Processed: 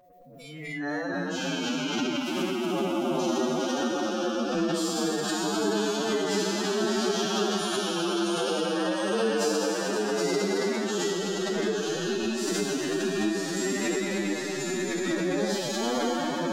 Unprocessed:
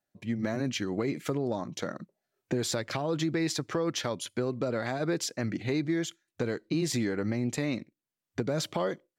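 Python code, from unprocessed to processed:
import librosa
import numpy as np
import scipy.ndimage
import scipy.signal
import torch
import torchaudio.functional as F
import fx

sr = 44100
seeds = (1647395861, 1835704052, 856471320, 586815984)

p1 = fx.spec_trails(x, sr, decay_s=2.23)
p2 = p1 + fx.echo_feedback(p1, sr, ms=91, feedback_pct=57, wet_db=-16.0, dry=0)
p3 = p2 + 10.0 ** (-41.0 / 20.0) * np.sin(2.0 * np.pi * 540.0 * np.arange(len(p2)) / sr)
p4 = fx.rev_spring(p3, sr, rt60_s=2.9, pass_ms=(59,), chirp_ms=55, drr_db=-2.5)
p5 = fx.rider(p4, sr, range_db=4, speed_s=0.5)
p6 = fx.pitch_keep_formants(p5, sr, semitones=5.0)
p7 = fx.noise_reduce_blind(p6, sr, reduce_db=18)
p8 = fx.echo_pitch(p7, sr, ms=123, semitones=-1, count=3, db_per_echo=-3.0)
p9 = fx.stretch_vocoder(p8, sr, factor=1.8)
p10 = fx.pre_swell(p9, sr, db_per_s=35.0)
y = p10 * librosa.db_to_amplitude(-4.5)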